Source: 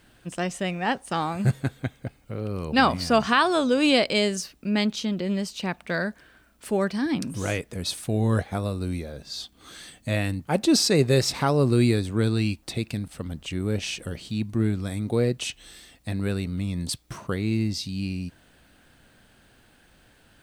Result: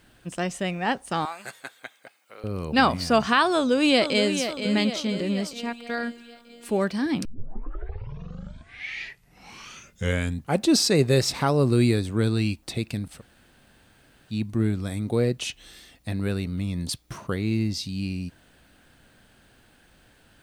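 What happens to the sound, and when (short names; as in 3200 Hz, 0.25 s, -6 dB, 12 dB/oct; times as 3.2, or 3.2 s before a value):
1.25–2.44 HPF 880 Hz
3.54–4.34 echo throw 0.47 s, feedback 60%, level -8.5 dB
5.53–6.69 robotiser 236 Hz
7.25 tape start 3.39 s
13.19–14.31 room tone, crossfade 0.06 s
15.38–17.77 notch 8000 Hz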